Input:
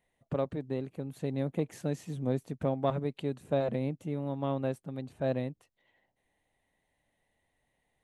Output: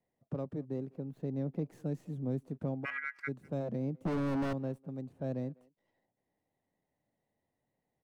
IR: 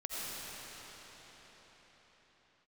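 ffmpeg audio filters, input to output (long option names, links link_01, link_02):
-filter_complex "[0:a]highpass=120,tiltshelf=frequency=690:gain=5.5,asettb=1/sr,asplit=3[link_01][link_02][link_03];[link_01]atrim=end=4.054[link_04];[link_02]atrim=start=4.05:end=4.53,asetpts=PTS-STARTPTS,afade=type=in:duration=0.004:curve=qsin,afade=type=out:start_time=0.476:duration=0.004:curve=qsin,asplit=2[link_05][link_06];[link_06]highpass=frequency=720:poles=1,volume=38dB,asoftclip=type=tanh:threshold=-17.5dB[link_07];[link_05][link_07]amix=inputs=2:normalize=0,lowpass=frequency=1700:poles=1,volume=-6dB[link_08];[link_03]atrim=start=4.526[link_09];[link_04][link_08]acrossfade=duration=0.004:curve1=hsin:curve2=qsin[link_10];[link_10][link_09]acrossfade=duration=0.004:curve1=qsin:curve2=hsin,acrossover=split=280|1200|1500[link_11][link_12][link_13][link_14];[link_12]alimiter=level_in=3.5dB:limit=-24dB:level=0:latency=1:release=53,volume=-3.5dB[link_15];[link_14]aeval=exprs='max(val(0),0)':channel_layout=same[link_16];[link_11][link_15][link_13][link_16]amix=inputs=4:normalize=0,asettb=1/sr,asplit=3[link_17][link_18][link_19];[link_17]atrim=end=0.944[link_20];[link_18]atrim=start=0.94:end=1.68,asetpts=PTS-STARTPTS,afade=type=in:duration=0.004:curve=qsin,afade=type=out:start_time=0.736:duration=0.004:curve=qsin,equalizer=frequency=9200:width_type=o:width=0.88:gain=-9[link_21];[link_19]atrim=start=1.676[link_22];[link_20][link_21]acrossfade=duration=0.004:curve1=hsin:curve2=qsin[link_23];[link_23][link_22]acrossfade=duration=0.004:curve1=qsin:curve2=hsin,asplit=3[link_24][link_25][link_26];[link_24]afade=type=out:start_time=2.84:duration=0.02[link_27];[link_25]aeval=exprs='val(0)*sin(2*PI*1800*n/s)':channel_layout=same,afade=type=in:start_time=2.84:duration=0.02,afade=type=out:start_time=3.27:duration=0.02[link_28];[link_26]afade=type=in:start_time=3.27:duration=0.02[link_29];[link_27][link_28][link_29]amix=inputs=3:normalize=0,asplit=2[link_30][link_31];[link_31]adelay=200,highpass=300,lowpass=3400,asoftclip=type=hard:threshold=-27.5dB,volume=-24dB[link_32];[link_30][link_32]amix=inputs=2:normalize=0,volume=-5.5dB"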